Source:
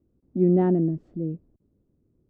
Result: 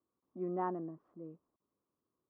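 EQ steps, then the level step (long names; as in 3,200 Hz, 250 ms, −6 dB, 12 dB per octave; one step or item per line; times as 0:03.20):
resonant band-pass 1,100 Hz, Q 6.4
+8.0 dB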